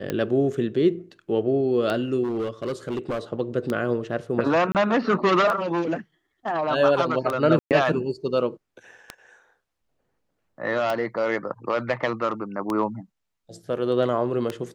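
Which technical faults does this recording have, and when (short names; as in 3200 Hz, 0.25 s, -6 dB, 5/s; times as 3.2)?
tick 33 1/3 rpm -13 dBFS
2.23–3.19 clipped -23 dBFS
4.72–4.75 gap 28 ms
7.59–7.71 gap 0.118 s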